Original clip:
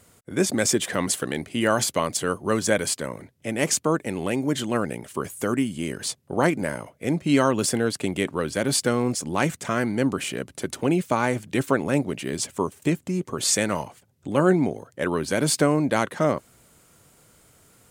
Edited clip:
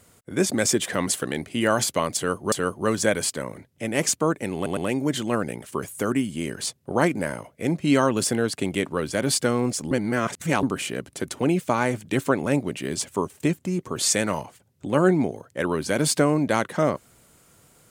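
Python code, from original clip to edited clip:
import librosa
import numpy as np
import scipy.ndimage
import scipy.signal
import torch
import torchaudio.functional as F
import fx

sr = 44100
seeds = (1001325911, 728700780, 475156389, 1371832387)

y = fx.edit(x, sr, fx.repeat(start_s=2.16, length_s=0.36, count=2),
    fx.stutter(start_s=4.19, slice_s=0.11, count=3),
    fx.reverse_span(start_s=9.33, length_s=0.72), tone=tone)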